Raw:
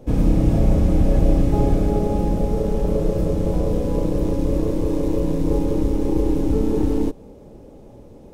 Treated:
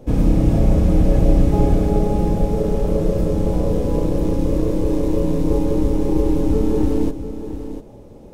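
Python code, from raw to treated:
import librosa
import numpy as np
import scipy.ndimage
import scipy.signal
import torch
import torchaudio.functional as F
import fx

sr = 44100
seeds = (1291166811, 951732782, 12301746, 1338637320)

y = x + 10.0 ** (-11.0 / 20.0) * np.pad(x, (int(697 * sr / 1000.0), 0))[:len(x)]
y = y * 10.0 ** (1.5 / 20.0)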